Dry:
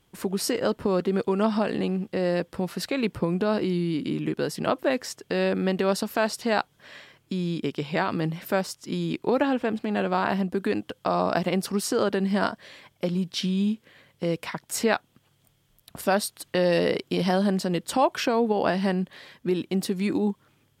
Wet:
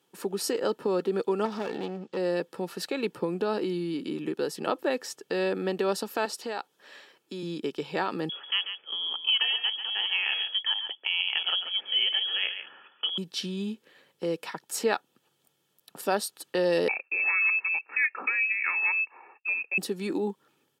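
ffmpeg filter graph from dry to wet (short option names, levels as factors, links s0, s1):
-filter_complex "[0:a]asettb=1/sr,asplit=3[s0][s1][s2];[s0]atrim=end=1.454[s3];[s1]atrim=start=1.45:end=2.17,asetpts=PTS-STARTPTS,afade=t=in:d=0.004:c=qsin,afade=t=out:st=0.716:d=0.004:c=qsin,lowpass=f=7200:w=0.5412,lowpass=f=7200:w=1.3066,aeval=exprs='clip(val(0),-1,0.0335)':c=same[s4];[s2]atrim=start=2.166[s5];[s3][s4]acrossfade=d=0.004:c1=hsin:c2=qsin[s6];[s6][s5]acrossfade=d=0.004:c1=qsin:c2=hsin,asettb=1/sr,asplit=3[s7][s8][s9];[s7]atrim=end=6.254[s10];[s8]atrim=start=6.25:end=7.43,asetpts=PTS-STARTPTS,afade=t=in:d=0.004:c=qsin,afade=t=out:st=1.176:d=0.004:c=qsin,highpass=220,acompressor=threshold=0.0501:ratio=3:attack=3.2:release=140:knee=1:detection=peak[s11];[s9]atrim=start=7.426[s12];[s10][s11]acrossfade=d=0.004:c1=hsin:c2=qsin[s13];[s13][s12]acrossfade=d=0.004:c1=qsin:c2=hsin,asettb=1/sr,asplit=3[s14][s15][s16];[s14]atrim=end=8.294[s17];[s15]atrim=start=8.29:end=13.18,asetpts=PTS-STARTPTS,afade=t=in:d=0.004:c=qsin,afade=t=out:st=4.886:d=0.004:c=qsin,lowpass=f=3000:t=q:w=0.5098,lowpass=f=3000:t=q:w=0.6013,lowpass=f=3000:t=q:w=0.9,lowpass=f=3000:t=q:w=2.563,afreqshift=-3500,aecho=1:1:141:0.355,atrim=end_sample=215649[s18];[s16]atrim=start=13.176[s19];[s17][s18]acrossfade=d=0.004:c1=hsin:c2=qsin[s20];[s20][s19]acrossfade=d=0.004:c1=qsin:c2=hsin,asettb=1/sr,asplit=3[s21][s22][s23];[s21]atrim=end=16.884[s24];[s22]atrim=start=16.88:end=19.78,asetpts=PTS-STARTPTS,afade=t=in:d=0.004:c=qsin,afade=t=out:st=2.896:d=0.004:c=qsin,agate=range=0.0224:threshold=0.00316:ratio=3:release=100:detection=peak,lowpass=f=2400:t=q:w=0.5098,lowpass=f=2400:t=q:w=0.6013,lowpass=f=2400:t=q:w=0.9,lowpass=f=2400:t=q:w=2.563,afreqshift=-2800,highpass=f=210:w=0.5412,highpass=f=210:w=1.3066[s25];[s23]atrim=start=19.776[s26];[s24][s25]acrossfade=d=0.004:c1=hsin:c2=qsin[s27];[s27][s26]acrossfade=d=0.004:c1=qsin:c2=hsin,highpass=f=180:w=0.5412,highpass=f=180:w=1.3066,bandreject=f=2100:w=9.5,aecho=1:1:2.3:0.39,volume=0.668"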